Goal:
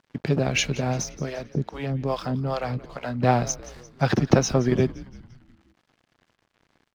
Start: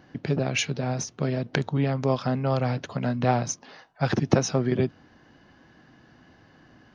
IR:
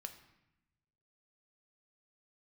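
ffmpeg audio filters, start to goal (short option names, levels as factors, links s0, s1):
-filter_complex "[0:a]aeval=exprs='sgn(val(0))*max(abs(val(0))-0.00316,0)':c=same,asettb=1/sr,asplit=3[s0][s1][s2];[s0]atrim=end=1.144[s3];[s1]atrim=start=1.14:end=3.23,asetpts=PTS-STARTPTS,afade=t=in:d=0.004:c=qsin,afade=t=out:st=2.086:d=0.004:c=qsin,acrossover=split=440[s4][s5];[s4]aeval=exprs='val(0)*(1-1/2+1/2*cos(2*PI*2.4*n/s))':c=same[s6];[s5]aeval=exprs='val(0)*(1-1/2-1/2*cos(2*PI*2.4*n/s))':c=same[s7];[s6][s7]amix=inputs=2:normalize=0[s8];[s2]atrim=start=3.226[s9];[s3][s8]acrossfade=d=0.004:c1=hsin:c2=qsin[s10];[s10][s9]acrossfade=d=0.004:c1=qsin:c2=hsin,asplit=6[s11][s12][s13][s14][s15][s16];[s12]adelay=173,afreqshift=-91,volume=0.119[s17];[s13]adelay=346,afreqshift=-182,volume=0.0638[s18];[s14]adelay=519,afreqshift=-273,volume=0.0347[s19];[s15]adelay=692,afreqshift=-364,volume=0.0186[s20];[s16]adelay=865,afreqshift=-455,volume=0.0101[s21];[s11][s17][s18][s19][s20][s21]amix=inputs=6:normalize=0,volume=1.41"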